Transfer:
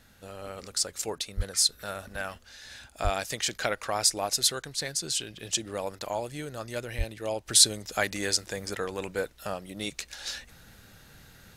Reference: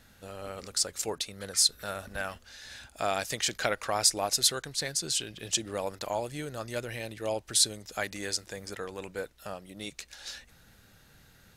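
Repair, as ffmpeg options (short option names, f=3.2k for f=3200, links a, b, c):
-filter_complex "[0:a]asplit=3[a][b][c];[a]afade=t=out:st=1.36:d=0.02[d];[b]highpass=f=140:w=0.5412,highpass=f=140:w=1.3066,afade=t=in:st=1.36:d=0.02,afade=t=out:st=1.48:d=0.02[e];[c]afade=t=in:st=1.48:d=0.02[f];[d][e][f]amix=inputs=3:normalize=0,asplit=3[g][h][i];[g]afade=t=out:st=3.03:d=0.02[j];[h]highpass=f=140:w=0.5412,highpass=f=140:w=1.3066,afade=t=in:st=3.03:d=0.02,afade=t=out:st=3.15:d=0.02[k];[i]afade=t=in:st=3.15:d=0.02[l];[j][k][l]amix=inputs=3:normalize=0,asplit=3[m][n][o];[m]afade=t=out:st=6.97:d=0.02[p];[n]highpass=f=140:w=0.5412,highpass=f=140:w=1.3066,afade=t=in:st=6.97:d=0.02,afade=t=out:st=7.09:d=0.02[q];[o]afade=t=in:st=7.09:d=0.02[r];[p][q][r]amix=inputs=3:normalize=0,asetnsamples=n=441:p=0,asendcmd='7.46 volume volume -5.5dB',volume=0dB"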